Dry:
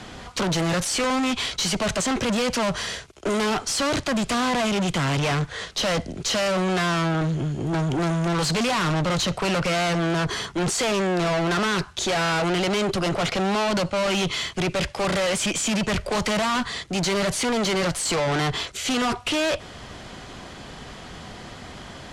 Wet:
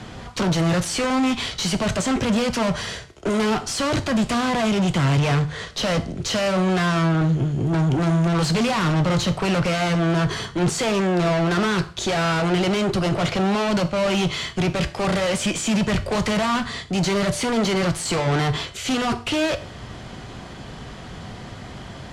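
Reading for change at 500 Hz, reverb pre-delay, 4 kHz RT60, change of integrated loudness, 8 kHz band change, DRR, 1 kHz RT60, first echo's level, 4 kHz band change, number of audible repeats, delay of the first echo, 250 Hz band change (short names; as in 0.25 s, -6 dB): +1.5 dB, 4 ms, 0.40 s, +2.0 dB, -2.0 dB, 9.0 dB, 0.45 s, none, -1.0 dB, none, none, +4.0 dB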